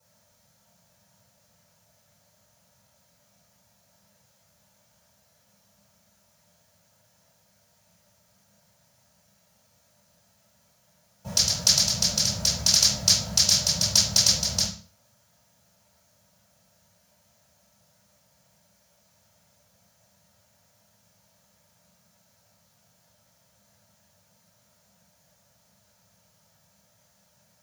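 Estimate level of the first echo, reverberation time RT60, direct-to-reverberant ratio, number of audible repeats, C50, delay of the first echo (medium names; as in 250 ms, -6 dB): no echo, 0.40 s, -14.0 dB, no echo, 6.5 dB, no echo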